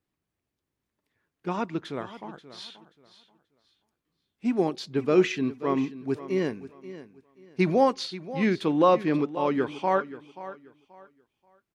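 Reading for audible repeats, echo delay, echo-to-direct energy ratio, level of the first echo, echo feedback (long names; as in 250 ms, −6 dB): 2, 532 ms, −14.5 dB, −15.0 dB, 26%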